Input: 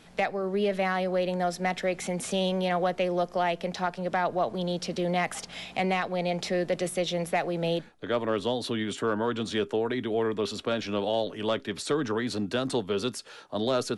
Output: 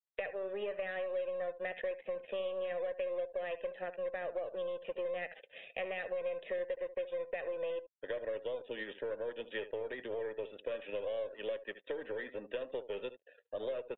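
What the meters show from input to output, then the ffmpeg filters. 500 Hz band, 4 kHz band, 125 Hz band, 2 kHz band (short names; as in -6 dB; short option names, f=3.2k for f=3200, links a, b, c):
-8.0 dB, -17.5 dB, -27.0 dB, -10.0 dB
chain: -filter_complex "[0:a]asplit=3[a][b][c];[a]bandpass=f=530:t=q:w=8,volume=0dB[d];[b]bandpass=f=1.84k:t=q:w=8,volume=-6dB[e];[c]bandpass=f=2.48k:t=q:w=8,volume=-9dB[f];[d][e][f]amix=inputs=3:normalize=0,aeval=exprs='0.0841*(cos(1*acos(clip(val(0)/0.0841,-1,1)))-cos(1*PI/2))+0.00596*(cos(3*acos(clip(val(0)/0.0841,-1,1)))-cos(3*PI/2))+0.000596*(cos(4*acos(clip(val(0)/0.0841,-1,1)))-cos(4*PI/2))+0.00668*(cos(5*acos(clip(val(0)/0.0841,-1,1)))-cos(5*PI/2))+0.00237*(cos(8*acos(clip(val(0)/0.0841,-1,1)))-cos(8*PI/2))':c=same,acompressor=threshold=-38dB:ratio=6,aresample=8000,aeval=exprs='sgn(val(0))*max(abs(val(0))-0.00141,0)':c=same,aresample=44100,aecho=1:1:73:0.211,afftdn=nr=21:nf=-62,lowshelf=f=400:g=-5,volume=5.5dB"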